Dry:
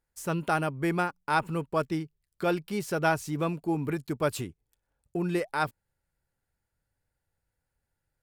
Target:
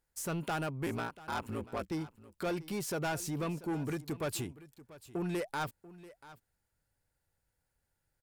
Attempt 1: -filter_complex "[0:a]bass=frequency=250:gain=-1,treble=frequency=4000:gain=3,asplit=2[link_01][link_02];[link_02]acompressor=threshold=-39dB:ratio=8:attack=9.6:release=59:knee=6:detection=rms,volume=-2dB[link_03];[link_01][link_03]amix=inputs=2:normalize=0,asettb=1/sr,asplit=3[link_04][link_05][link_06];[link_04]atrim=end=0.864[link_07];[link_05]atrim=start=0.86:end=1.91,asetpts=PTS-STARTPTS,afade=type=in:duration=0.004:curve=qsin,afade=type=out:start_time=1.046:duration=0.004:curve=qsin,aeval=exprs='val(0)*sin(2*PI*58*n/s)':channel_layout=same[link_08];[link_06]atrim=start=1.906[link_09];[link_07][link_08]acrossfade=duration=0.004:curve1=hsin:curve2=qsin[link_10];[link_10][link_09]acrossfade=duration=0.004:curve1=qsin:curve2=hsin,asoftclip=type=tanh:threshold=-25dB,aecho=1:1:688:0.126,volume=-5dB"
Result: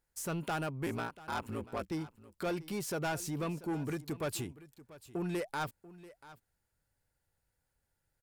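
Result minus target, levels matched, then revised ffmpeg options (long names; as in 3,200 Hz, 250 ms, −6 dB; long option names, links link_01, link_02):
downward compressor: peak gain reduction +5 dB
-filter_complex "[0:a]bass=frequency=250:gain=-1,treble=frequency=4000:gain=3,asplit=2[link_01][link_02];[link_02]acompressor=threshold=-33dB:ratio=8:attack=9.6:release=59:knee=6:detection=rms,volume=-2dB[link_03];[link_01][link_03]amix=inputs=2:normalize=0,asettb=1/sr,asplit=3[link_04][link_05][link_06];[link_04]atrim=end=0.864[link_07];[link_05]atrim=start=0.86:end=1.91,asetpts=PTS-STARTPTS,afade=type=in:duration=0.004:curve=qsin,afade=type=out:start_time=1.046:duration=0.004:curve=qsin,aeval=exprs='val(0)*sin(2*PI*58*n/s)':channel_layout=same[link_08];[link_06]atrim=start=1.906[link_09];[link_07][link_08]acrossfade=duration=0.004:curve1=hsin:curve2=qsin[link_10];[link_10][link_09]acrossfade=duration=0.004:curve1=qsin:curve2=hsin,asoftclip=type=tanh:threshold=-25dB,aecho=1:1:688:0.126,volume=-5dB"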